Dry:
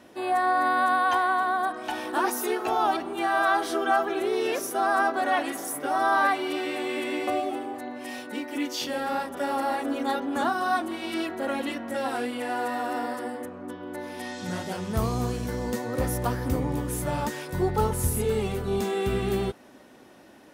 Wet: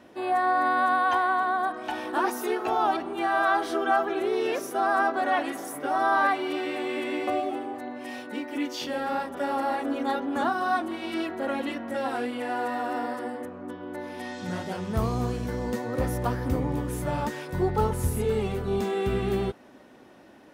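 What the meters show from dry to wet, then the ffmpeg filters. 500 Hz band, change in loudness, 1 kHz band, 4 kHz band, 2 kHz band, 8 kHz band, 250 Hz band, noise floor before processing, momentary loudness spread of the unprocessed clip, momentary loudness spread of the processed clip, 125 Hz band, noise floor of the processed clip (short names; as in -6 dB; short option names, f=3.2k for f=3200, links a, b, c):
0.0 dB, -0.5 dB, -0.5 dB, -3.0 dB, -1.0 dB, -6.5 dB, 0.0 dB, -51 dBFS, 11 LU, 10 LU, 0.0 dB, -51 dBFS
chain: -af "equalizer=f=12k:t=o:w=2.1:g=-7.5"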